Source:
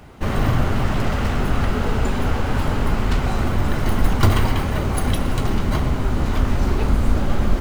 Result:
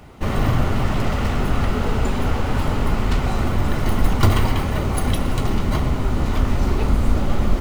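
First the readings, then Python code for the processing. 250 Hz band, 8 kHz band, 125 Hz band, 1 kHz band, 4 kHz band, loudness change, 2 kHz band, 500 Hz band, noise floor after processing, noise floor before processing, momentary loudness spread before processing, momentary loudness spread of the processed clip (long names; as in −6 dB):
0.0 dB, 0.0 dB, 0.0 dB, 0.0 dB, 0.0 dB, 0.0 dB, −1.0 dB, 0.0 dB, −23 dBFS, −23 dBFS, 3 LU, 3 LU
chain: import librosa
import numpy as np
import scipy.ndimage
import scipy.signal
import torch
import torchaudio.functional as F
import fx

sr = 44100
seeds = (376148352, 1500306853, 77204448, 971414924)

y = fx.notch(x, sr, hz=1600.0, q=13.0)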